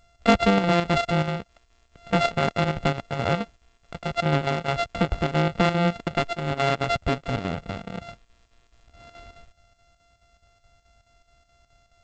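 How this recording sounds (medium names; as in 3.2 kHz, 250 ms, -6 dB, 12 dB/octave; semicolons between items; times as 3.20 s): a buzz of ramps at a fixed pitch in blocks of 64 samples; chopped level 4.7 Hz, depth 60%, duty 75%; G.722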